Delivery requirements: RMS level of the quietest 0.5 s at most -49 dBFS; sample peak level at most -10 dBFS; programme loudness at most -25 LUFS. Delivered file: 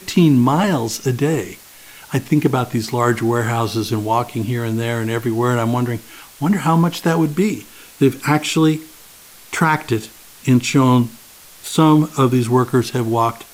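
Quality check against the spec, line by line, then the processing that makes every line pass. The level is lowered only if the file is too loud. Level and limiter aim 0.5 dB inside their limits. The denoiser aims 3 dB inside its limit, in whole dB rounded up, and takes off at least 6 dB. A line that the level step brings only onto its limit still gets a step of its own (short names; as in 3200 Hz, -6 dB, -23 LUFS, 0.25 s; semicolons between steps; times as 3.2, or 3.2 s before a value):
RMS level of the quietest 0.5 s -43 dBFS: fail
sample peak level -3.5 dBFS: fail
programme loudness -17.5 LUFS: fail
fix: gain -8 dB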